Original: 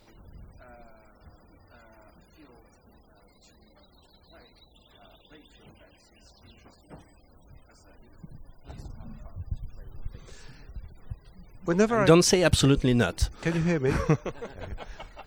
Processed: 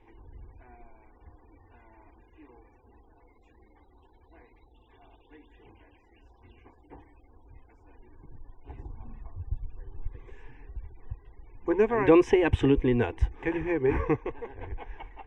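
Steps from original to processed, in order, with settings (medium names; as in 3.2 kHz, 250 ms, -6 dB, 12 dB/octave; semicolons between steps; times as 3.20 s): low-pass 2.1 kHz 12 dB/octave; static phaser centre 900 Hz, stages 8; trim +2.5 dB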